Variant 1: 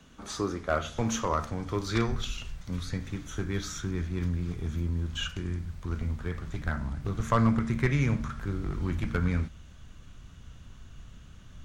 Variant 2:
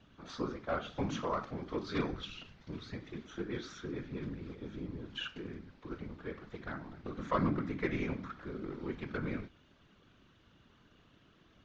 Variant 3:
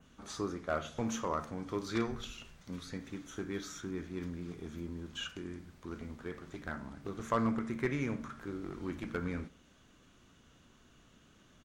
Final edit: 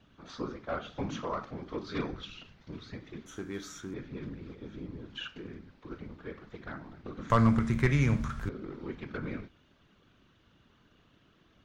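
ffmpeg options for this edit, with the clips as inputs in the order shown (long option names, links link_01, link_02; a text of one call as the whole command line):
ffmpeg -i take0.wav -i take1.wav -i take2.wav -filter_complex "[1:a]asplit=3[link_01][link_02][link_03];[link_01]atrim=end=3.262[link_04];[2:a]atrim=start=3.258:end=3.942[link_05];[link_02]atrim=start=3.938:end=7.302[link_06];[0:a]atrim=start=7.298:end=8.492[link_07];[link_03]atrim=start=8.488[link_08];[link_04][link_05]acrossfade=duration=0.004:curve1=hsin:curve2=hsin[link_09];[link_09][link_06]acrossfade=duration=0.004:curve1=hsin:curve2=hsin[link_10];[link_10][link_07]acrossfade=duration=0.004:curve1=hsin:curve2=hsin[link_11];[link_11][link_08]acrossfade=duration=0.004:curve1=hsin:curve2=hsin" out.wav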